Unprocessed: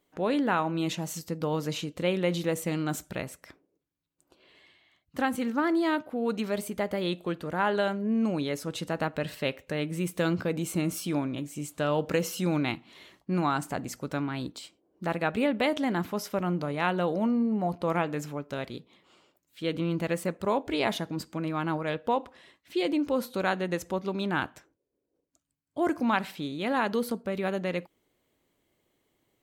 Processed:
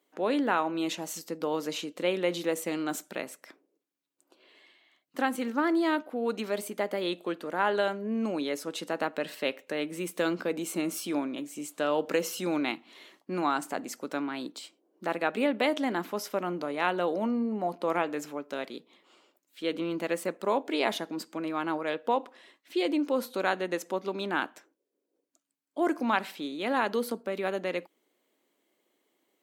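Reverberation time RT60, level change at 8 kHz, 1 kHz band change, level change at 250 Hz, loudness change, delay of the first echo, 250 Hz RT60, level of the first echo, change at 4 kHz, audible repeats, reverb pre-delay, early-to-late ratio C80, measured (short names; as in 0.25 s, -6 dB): none, 0.0 dB, 0.0 dB, -2.5 dB, -1.0 dB, none, none, none, 0.0 dB, none, none, none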